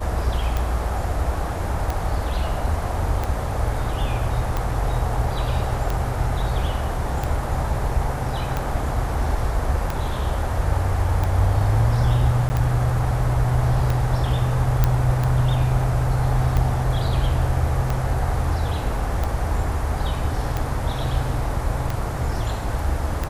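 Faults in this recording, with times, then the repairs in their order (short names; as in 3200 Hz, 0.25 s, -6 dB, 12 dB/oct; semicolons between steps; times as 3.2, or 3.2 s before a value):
tick 45 rpm
12.49–12.5 gap 10 ms
14.84 pop -5 dBFS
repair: de-click; interpolate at 12.49, 10 ms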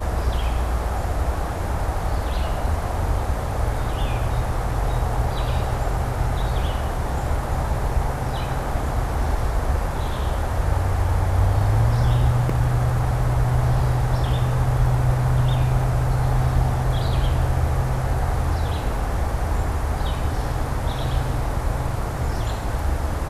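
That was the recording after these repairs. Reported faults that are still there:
none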